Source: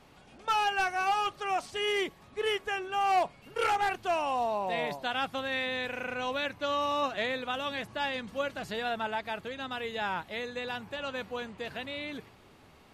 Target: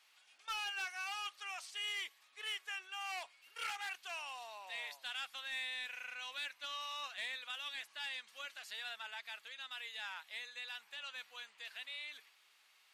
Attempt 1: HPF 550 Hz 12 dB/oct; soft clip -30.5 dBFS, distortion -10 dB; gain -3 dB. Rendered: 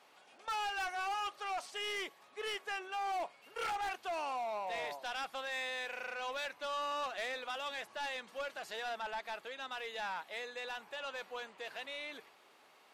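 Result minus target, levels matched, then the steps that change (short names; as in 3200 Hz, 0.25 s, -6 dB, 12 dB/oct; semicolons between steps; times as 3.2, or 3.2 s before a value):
500 Hz band +14.0 dB
change: HPF 2100 Hz 12 dB/oct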